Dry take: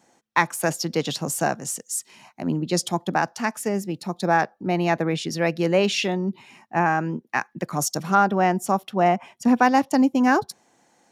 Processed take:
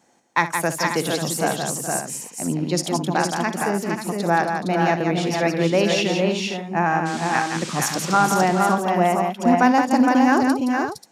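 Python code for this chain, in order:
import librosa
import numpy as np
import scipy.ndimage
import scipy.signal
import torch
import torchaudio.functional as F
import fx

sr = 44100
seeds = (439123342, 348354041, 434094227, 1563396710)

y = fx.dmg_noise_band(x, sr, seeds[0], low_hz=880.0, high_hz=7900.0, level_db=-37.0, at=(7.05, 8.27), fade=0.02)
y = fx.echo_multitap(y, sr, ms=(59, 170, 422, 462, 535), db=(-13.0, -6.0, -13.0, -4.5, -10.0))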